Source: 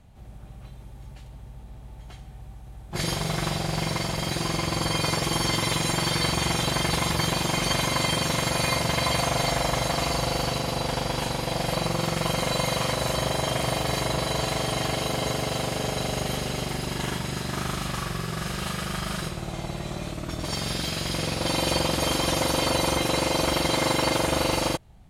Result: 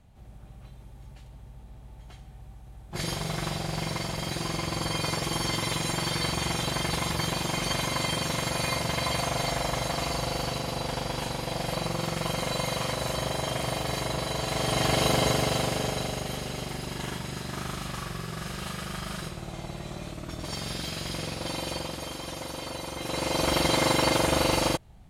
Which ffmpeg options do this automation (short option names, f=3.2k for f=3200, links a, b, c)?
-af "volume=16.5dB,afade=t=in:st=14.44:d=0.63:silence=0.398107,afade=t=out:st=15.07:d=1.14:silence=0.354813,afade=t=out:st=21.09:d=1.02:silence=0.421697,afade=t=in:st=22.95:d=0.64:silence=0.237137"